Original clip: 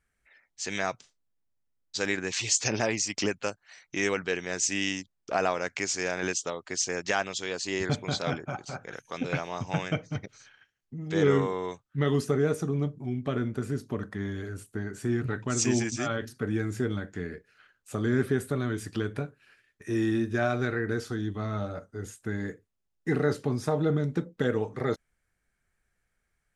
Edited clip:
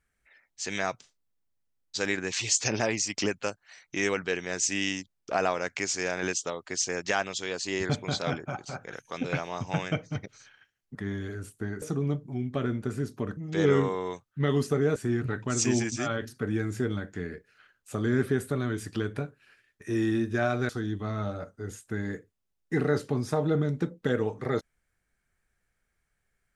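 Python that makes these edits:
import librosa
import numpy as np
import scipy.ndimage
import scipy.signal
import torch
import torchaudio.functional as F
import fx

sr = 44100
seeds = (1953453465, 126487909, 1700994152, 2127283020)

y = fx.edit(x, sr, fx.swap(start_s=10.95, length_s=1.59, other_s=14.09, other_length_s=0.87),
    fx.cut(start_s=20.69, length_s=0.35), tone=tone)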